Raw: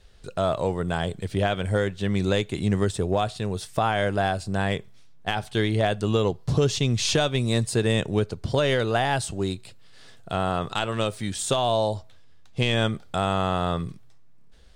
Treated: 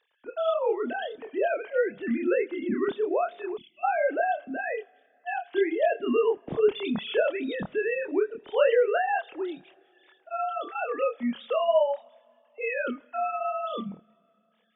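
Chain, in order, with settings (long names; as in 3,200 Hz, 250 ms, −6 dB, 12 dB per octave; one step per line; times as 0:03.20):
three sine waves on the formant tracks
coupled-rooms reverb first 0.37 s, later 3 s, from −18 dB, DRR 18 dB
multi-voice chorus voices 2, 0.87 Hz, delay 27 ms, depth 1.6 ms
gain on a spectral selection 0:03.57–0:03.84, 370–2,000 Hz −30 dB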